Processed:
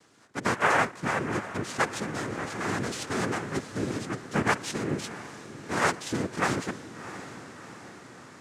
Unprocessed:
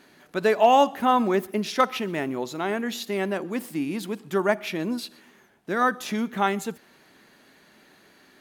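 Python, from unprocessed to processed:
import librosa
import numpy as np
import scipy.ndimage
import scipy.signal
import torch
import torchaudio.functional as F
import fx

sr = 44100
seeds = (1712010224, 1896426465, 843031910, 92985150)

p1 = fx.noise_vocoder(x, sr, seeds[0], bands=3)
p2 = p1 + fx.echo_diffused(p1, sr, ms=699, feedback_pct=54, wet_db=-13.5, dry=0)
p3 = fx.rider(p2, sr, range_db=5, speed_s=2.0)
y = p3 * 10.0 ** (-6.5 / 20.0)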